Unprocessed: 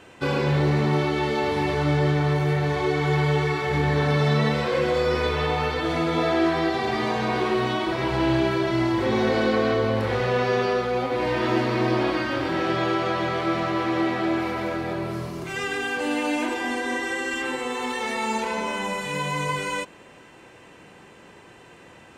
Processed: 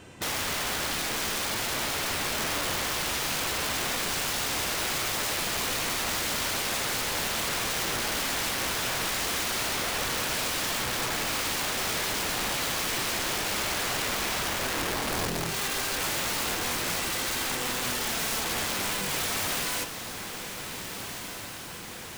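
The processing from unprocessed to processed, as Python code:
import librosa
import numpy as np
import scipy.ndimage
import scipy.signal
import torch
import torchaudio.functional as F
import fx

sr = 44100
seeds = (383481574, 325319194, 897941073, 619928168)

y = fx.bass_treble(x, sr, bass_db=9, treble_db=8)
y = (np.mod(10.0 ** (22.5 / 20.0) * y + 1.0, 2.0) - 1.0) / 10.0 ** (22.5 / 20.0)
y = fx.echo_diffused(y, sr, ms=1619, feedback_pct=60, wet_db=-9)
y = y * librosa.db_to_amplitude(-3.0)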